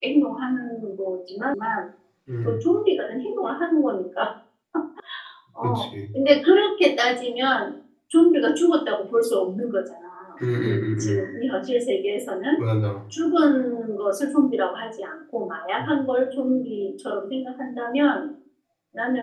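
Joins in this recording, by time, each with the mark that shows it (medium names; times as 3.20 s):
1.54 s: sound stops dead
5.00 s: sound stops dead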